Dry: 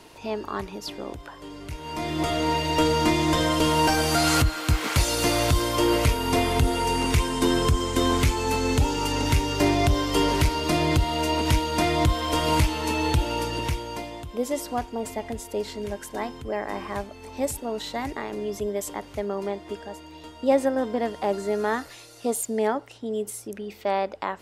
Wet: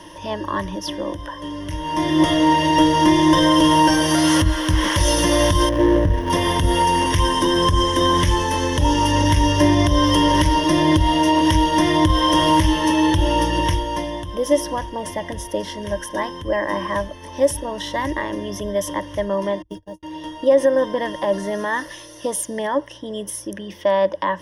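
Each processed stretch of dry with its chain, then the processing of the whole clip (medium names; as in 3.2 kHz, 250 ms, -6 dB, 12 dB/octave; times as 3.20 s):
5.69–6.30 s: median filter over 41 samples + treble shelf 3.9 kHz -8 dB + tape noise reduction on one side only encoder only
19.62–20.03 s: gate -38 dBFS, range -41 dB + peaking EQ 1.6 kHz -14 dB 2.4 oct + short-mantissa float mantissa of 4-bit
whole clip: treble shelf 5.8 kHz -4.5 dB; peak limiter -17 dBFS; rippled EQ curve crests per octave 1.2, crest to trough 16 dB; trim +5.5 dB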